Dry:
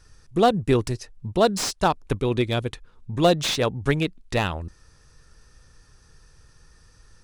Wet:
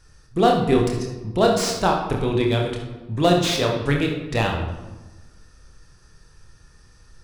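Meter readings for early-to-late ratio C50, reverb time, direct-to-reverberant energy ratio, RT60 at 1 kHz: 3.5 dB, 1.2 s, 0.0 dB, 1.1 s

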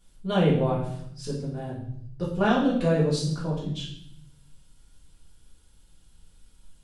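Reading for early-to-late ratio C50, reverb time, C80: 4.0 dB, 0.70 s, 7.5 dB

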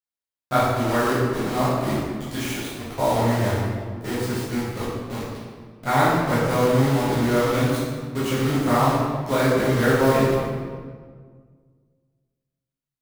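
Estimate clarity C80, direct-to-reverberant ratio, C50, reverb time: 0.5 dB, −11.5 dB, −2.0 dB, 1.7 s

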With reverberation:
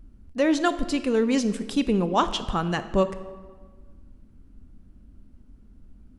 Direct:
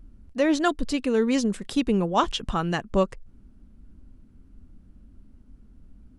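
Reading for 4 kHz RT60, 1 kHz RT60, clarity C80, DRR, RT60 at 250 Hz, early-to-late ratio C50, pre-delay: 1.0 s, 1.5 s, 14.0 dB, 11.5 dB, 1.5 s, 12.5 dB, 23 ms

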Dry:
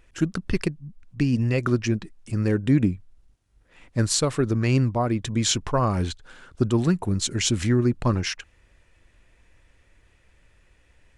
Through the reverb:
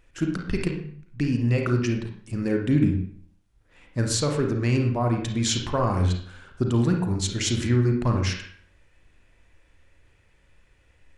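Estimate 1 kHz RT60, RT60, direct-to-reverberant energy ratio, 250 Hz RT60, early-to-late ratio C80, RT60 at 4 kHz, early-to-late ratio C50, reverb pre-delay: 0.55 s, 0.55 s, 2.0 dB, 0.55 s, 9.0 dB, 0.45 s, 4.5 dB, 33 ms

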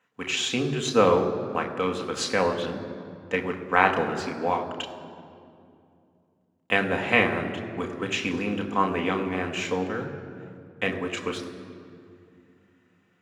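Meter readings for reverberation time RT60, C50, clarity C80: 2.5 s, 9.0 dB, 9.5 dB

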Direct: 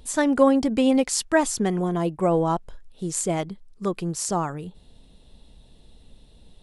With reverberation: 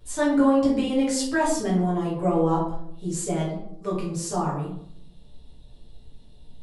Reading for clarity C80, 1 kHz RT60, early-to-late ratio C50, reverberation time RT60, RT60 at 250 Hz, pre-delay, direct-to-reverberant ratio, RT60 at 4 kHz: 7.0 dB, 0.65 s, 3.5 dB, 0.70 s, 0.90 s, 7 ms, −7.5 dB, 0.45 s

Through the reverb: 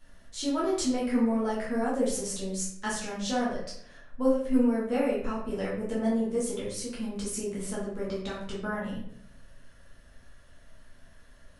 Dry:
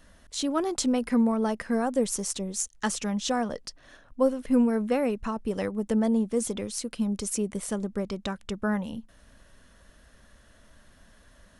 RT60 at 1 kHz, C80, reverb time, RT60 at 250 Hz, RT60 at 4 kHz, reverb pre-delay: 0.60 s, 7.0 dB, 0.65 s, 0.85 s, 0.45 s, 9 ms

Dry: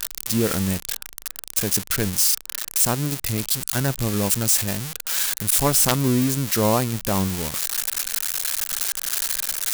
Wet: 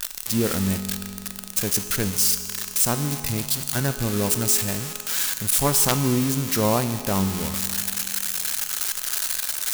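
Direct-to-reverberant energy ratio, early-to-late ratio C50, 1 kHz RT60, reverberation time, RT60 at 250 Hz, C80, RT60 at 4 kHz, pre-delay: 8.5 dB, 9.5 dB, 2.8 s, 2.7 s, 2.8 s, 10.0 dB, 2.6 s, 5 ms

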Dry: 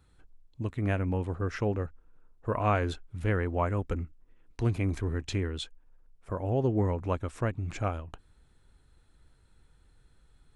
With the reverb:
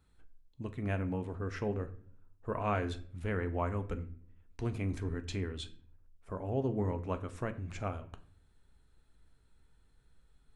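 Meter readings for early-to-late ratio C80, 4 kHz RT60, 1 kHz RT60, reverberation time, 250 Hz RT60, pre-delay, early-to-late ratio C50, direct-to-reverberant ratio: 19.0 dB, 0.35 s, 0.45 s, 0.55 s, 0.80 s, 4 ms, 15.5 dB, 8.5 dB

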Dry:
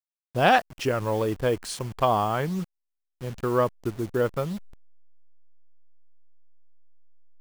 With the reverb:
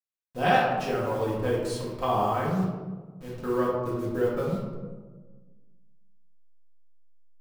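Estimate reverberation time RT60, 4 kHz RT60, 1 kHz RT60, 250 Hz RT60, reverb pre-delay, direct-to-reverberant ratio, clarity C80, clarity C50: 1.4 s, 0.65 s, 1.2 s, 1.8 s, 4 ms, −6.0 dB, 3.5 dB, 1.0 dB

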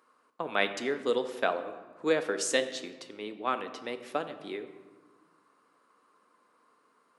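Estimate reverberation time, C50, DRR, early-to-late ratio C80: 1.4 s, 11.5 dB, 8.5 dB, 13.0 dB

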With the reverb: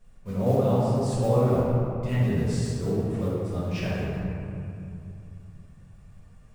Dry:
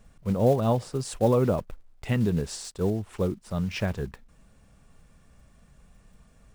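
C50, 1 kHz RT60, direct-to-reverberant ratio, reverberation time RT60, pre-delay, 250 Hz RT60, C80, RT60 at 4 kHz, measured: −3.5 dB, 2.6 s, −9.5 dB, 2.6 s, 4 ms, 3.6 s, −1.5 dB, 1.5 s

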